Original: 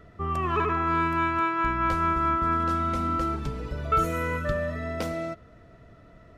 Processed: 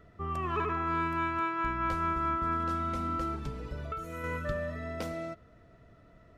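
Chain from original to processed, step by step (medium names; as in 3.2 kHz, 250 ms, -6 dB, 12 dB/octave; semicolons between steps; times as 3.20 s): 3.83–4.24 s: compression 10:1, threshold -29 dBFS, peak gain reduction 11 dB; trim -6 dB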